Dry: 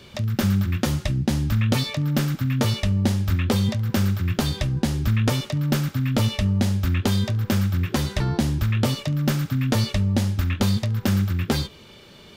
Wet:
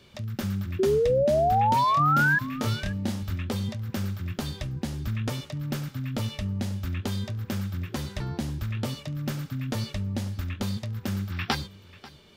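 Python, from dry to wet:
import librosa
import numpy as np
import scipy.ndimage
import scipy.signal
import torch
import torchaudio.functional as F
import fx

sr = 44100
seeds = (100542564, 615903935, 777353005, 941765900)

y = fx.spec_box(x, sr, start_s=11.33, length_s=0.22, low_hz=700.0, high_hz=5900.0, gain_db=12)
y = fx.doubler(y, sr, ms=27.0, db=-2, at=(1.85, 3.23))
y = fx.spec_paint(y, sr, seeds[0], shape='rise', start_s=0.79, length_s=1.6, low_hz=370.0, high_hz=1700.0, level_db=-13.0)
y = y + 10.0 ** (-19.5 / 20.0) * np.pad(y, (int(540 * sr / 1000.0), 0))[:len(y)]
y = F.gain(torch.from_numpy(y), -9.0).numpy()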